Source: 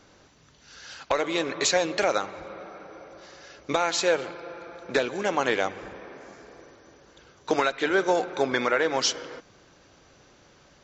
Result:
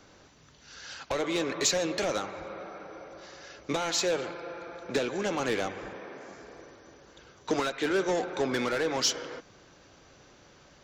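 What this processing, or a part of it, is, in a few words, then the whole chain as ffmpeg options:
one-band saturation: -filter_complex "[0:a]acrossover=split=380|4600[s0][s1][s2];[s1]asoftclip=type=tanh:threshold=0.0355[s3];[s0][s3][s2]amix=inputs=3:normalize=0,asettb=1/sr,asplit=3[s4][s5][s6];[s4]atrim=end=5.914[s7];[s5]atrim=start=5.91:end=6.32,asetpts=PTS-STARTPTS,afade=t=in:d=0.004:c=qsin,afade=t=out:st=0.406:d=0.004:c=qsin,highpass=100[s8];[s6]atrim=start=6.316[s9];[s7][s8]acrossfade=d=0.004:c1=hsin:c2=qsin[s10];[s10][s9]acrossfade=d=0.004:c1=qsin:c2=hsin"

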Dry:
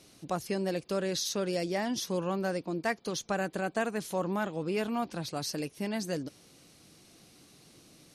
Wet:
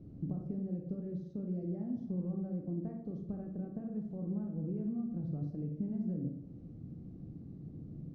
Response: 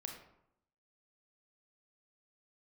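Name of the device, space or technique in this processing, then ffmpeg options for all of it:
television next door: -filter_complex "[0:a]acompressor=threshold=0.00501:ratio=5,lowpass=260[s0];[1:a]atrim=start_sample=2205[s1];[s0][s1]afir=irnorm=-1:irlink=0,asettb=1/sr,asplit=3[s2][s3][s4];[s2]atrim=end=2.064[s5];[s3]atrim=start=2.06:end=3.14,asetpts=PTS-STARTPTS,afade=t=in:d=0.004:c=qsin,afade=t=out:st=1.076:d=0.004:c=qsin,equalizer=f=710:w=1.5:g=2.5[s6];[s4]atrim=start=3.136[s7];[s5][s6]acrossfade=d=0.004:c1=hsin:c2=qsin[s8];[s8][s7]acrossfade=d=0.004:c1=qsin:c2=hsin,bass=f=250:g=7,treble=f=4000:g=12,bandreject=f=950:w=11,volume=4.47"

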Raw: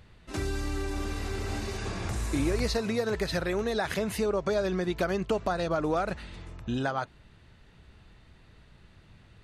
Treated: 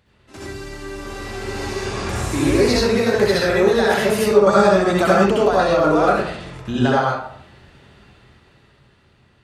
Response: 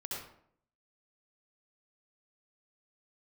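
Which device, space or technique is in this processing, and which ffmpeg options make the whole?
far laptop microphone: -filter_complex "[1:a]atrim=start_sample=2205[s0];[0:a][s0]afir=irnorm=-1:irlink=0,highpass=f=150:p=1,dynaudnorm=f=300:g=11:m=3.76,asettb=1/sr,asplit=3[s1][s2][s3];[s1]atrim=end=4.474[s4];[s2]atrim=start=4.47:end=5.26,asetpts=PTS-STARTPTS,afade=t=in:d=0.004:c=qsin,afade=t=out:st=0.786:d=0.004:c=qsin,equalizer=f=200:t=o:w=0.33:g=6,equalizer=f=400:t=o:w=0.33:g=-5,equalizer=f=800:t=o:w=0.33:g=9,equalizer=f=1250:t=o:w=0.33:g=9,equalizer=f=8000:t=o:w=0.33:g=11[s5];[s3]atrim=start=5.256[s6];[s4][s5]acrossfade=d=0.004:c1=hsin:c2=qsin[s7];[s7][s6]acrossfade=d=0.004:c1=qsin:c2=hsin,volume=1.19"

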